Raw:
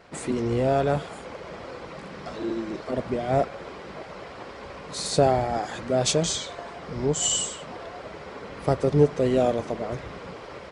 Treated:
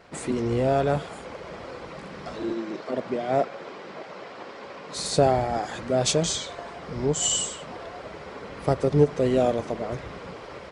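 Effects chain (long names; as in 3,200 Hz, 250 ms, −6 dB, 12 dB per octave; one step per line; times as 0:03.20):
0:02.53–0:04.95: band-pass filter 190–7,500 Hz
every ending faded ahead of time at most 500 dB per second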